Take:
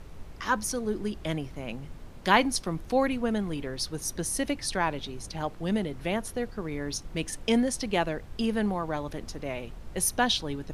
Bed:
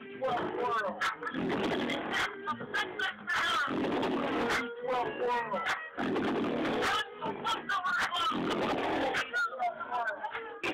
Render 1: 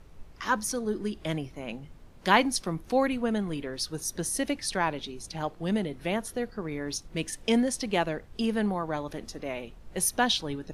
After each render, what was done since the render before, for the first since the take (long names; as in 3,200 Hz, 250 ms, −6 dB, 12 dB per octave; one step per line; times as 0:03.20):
noise reduction from a noise print 7 dB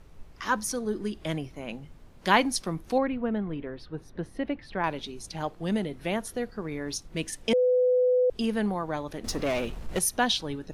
0:02.98–0:04.84: high-frequency loss of the air 470 metres
0:07.53–0:08.30: beep over 501 Hz −19 dBFS
0:09.24–0:09.99: leveller curve on the samples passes 3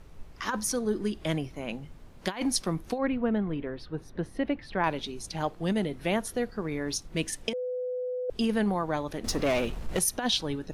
compressor whose output falls as the input rises −26 dBFS, ratio −0.5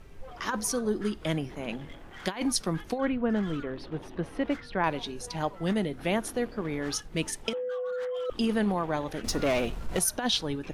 mix in bed −16 dB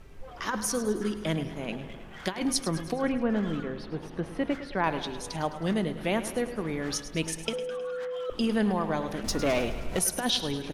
repeating echo 105 ms, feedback 57%, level −13 dB
spring reverb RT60 2.6 s, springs 43 ms, chirp 75 ms, DRR 15.5 dB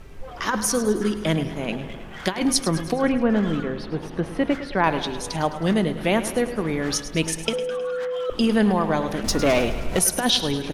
level +7 dB